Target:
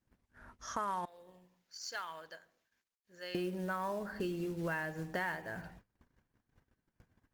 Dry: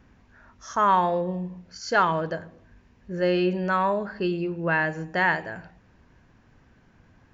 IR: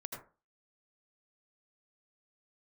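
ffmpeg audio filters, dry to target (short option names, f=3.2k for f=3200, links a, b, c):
-filter_complex "[0:a]agate=range=-28dB:threshold=-53dB:ratio=16:detection=peak,bandreject=f=2.6k:w=22,asettb=1/sr,asplit=3[a][b][c];[a]atrim=end=1.054[d];[b]atrim=start=1.05:end=3.35,asetpts=PTS-STARTPTS,afade=t=in:d=0.004:c=qsin,afade=t=out:st=2.296:d=0.004:c=qsin,aderivative[e];[c]atrim=start=3.346[f];[d][e]acrossfade=d=0.004:c1=hsin:c2=qsin[g];[g][f]acrossfade=d=0.004:c1=qsin:c2=hsin,acompressor=threshold=-35dB:ratio=4,acrusher=bits=5:mode=log:mix=0:aa=0.000001,volume=-1.5dB" -ar 48000 -c:a libopus -b:a 32k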